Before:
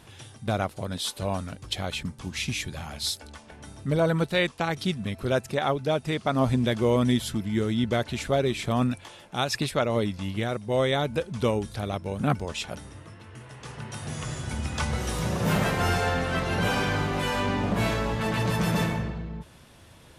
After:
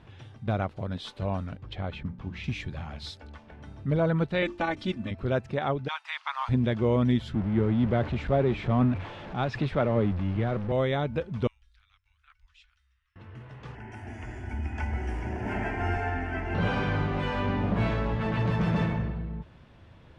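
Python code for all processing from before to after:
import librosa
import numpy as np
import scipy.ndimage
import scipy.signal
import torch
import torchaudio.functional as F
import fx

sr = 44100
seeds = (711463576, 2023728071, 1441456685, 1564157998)

y = fx.chain(x, sr, fx.lowpass(hz=2400.0, slope=6),
    fx.hum_notches(base_hz=60, count=6), at=(1.57, 2.44))
y = fx.chain(y, sr, fx.peak_eq(hz=7300.0, db=3.5, octaves=0.73),
    fx.hum_notches(base_hz=50, count=8),
    fx.comb(ms=3.4, depth=0.88), at=(4.42, 5.11))
y = fx.spec_clip(y, sr, under_db=15, at=(5.87, 6.48), fade=0.02)
y = fx.ellip_highpass(y, sr, hz=920.0, order=4, stop_db=70, at=(5.87, 6.48), fade=0.02)
y = fx.chain(y, sr, fx.zero_step(step_db=-27.0),
    fx.lowpass(hz=2000.0, slope=6),
    fx.band_widen(depth_pct=40), at=(7.35, 10.72))
y = fx.chain(y, sr, fx.cheby2_bandstop(low_hz=130.0, high_hz=460.0, order=4, stop_db=60),
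    fx.tone_stack(knobs='6-0-2'), at=(11.47, 13.16))
y = fx.chain(y, sr, fx.law_mismatch(coded='mu'),
    fx.fixed_phaser(hz=780.0, stages=8), at=(13.75, 16.55))
y = scipy.signal.sosfilt(scipy.signal.butter(2, 2800.0, 'lowpass', fs=sr, output='sos'), y)
y = fx.low_shelf(y, sr, hz=190.0, db=6.0)
y = y * 10.0 ** (-3.5 / 20.0)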